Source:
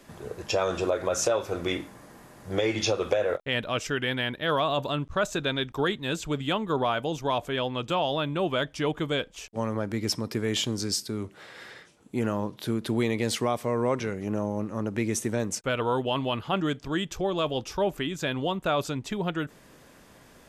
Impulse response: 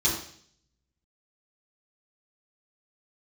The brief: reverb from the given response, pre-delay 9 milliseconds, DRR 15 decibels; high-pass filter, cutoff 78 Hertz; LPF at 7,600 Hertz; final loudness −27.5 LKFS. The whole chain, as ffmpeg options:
-filter_complex "[0:a]highpass=78,lowpass=7600,asplit=2[link_01][link_02];[1:a]atrim=start_sample=2205,adelay=9[link_03];[link_02][link_03]afir=irnorm=-1:irlink=0,volume=-25.5dB[link_04];[link_01][link_04]amix=inputs=2:normalize=0,volume=1dB"

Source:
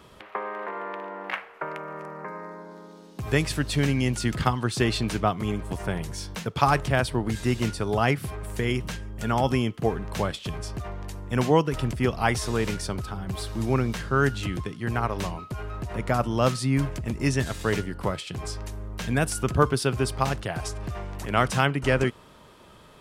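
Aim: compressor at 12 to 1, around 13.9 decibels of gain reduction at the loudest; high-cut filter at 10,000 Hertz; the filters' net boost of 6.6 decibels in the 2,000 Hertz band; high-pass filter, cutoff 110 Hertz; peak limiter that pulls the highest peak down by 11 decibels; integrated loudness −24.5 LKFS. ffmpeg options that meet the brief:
ffmpeg -i in.wav -af "highpass=110,lowpass=10000,equalizer=frequency=2000:width_type=o:gain=8.5,acompressor=threshold=-27dB:ratio=12,volume=10.5dB,alimiter=limit=-12.5dB:level=0:latency=1" out.wav

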